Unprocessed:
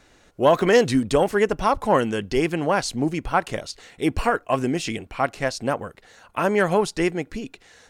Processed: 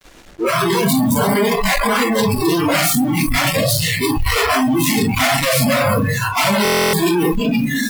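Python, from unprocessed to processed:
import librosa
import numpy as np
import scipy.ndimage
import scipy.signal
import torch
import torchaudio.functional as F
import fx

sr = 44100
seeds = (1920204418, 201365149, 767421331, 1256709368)

y = fx.self_delay(x, sr, depth_ms=0.62)
y = fx.low_shelf(y, sr, hz=150.0, db=-2.5)
y = fx.notch(y, sr, hz=610.0, q=12.0)
y = fx.over_compress(y, sr, threshold_db=-24.0, ratio=-1.0)
y = fx.room_shoebox(y, sr, seeds[0], volume_m3=640.0, walls='furnished', distance_m=9.4)
y = fx.fuzz(y, sr, gain_db=44.0, gate_db=-40.0)
y = y + 10.0 ** (-10.0 / 20.0) * np.pad(y, (int(342 * sr / 1000.0), 0))[:len(y)]
y = fx.noise_reduce_blind(y, sr, reduce_db=24)
y = fx.buffer_glitch(y, sr, at_s=(6.63,), block=1024, repeats=12)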